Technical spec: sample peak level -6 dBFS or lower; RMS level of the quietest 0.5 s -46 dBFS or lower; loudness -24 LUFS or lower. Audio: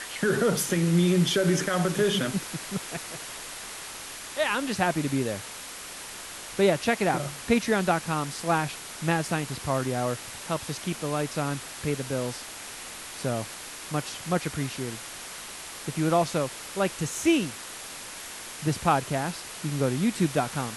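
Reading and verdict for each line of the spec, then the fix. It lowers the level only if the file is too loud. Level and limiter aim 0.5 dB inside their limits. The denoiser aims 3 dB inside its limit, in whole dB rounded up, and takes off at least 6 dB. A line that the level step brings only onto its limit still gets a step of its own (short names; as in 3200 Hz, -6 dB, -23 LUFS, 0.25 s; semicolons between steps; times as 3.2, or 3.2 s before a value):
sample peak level -9.5 dBFS: OK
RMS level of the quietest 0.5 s -40 dBFS: fail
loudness -28.0 LUFS: OK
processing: denoiser 9 dB, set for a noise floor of -40 dBFS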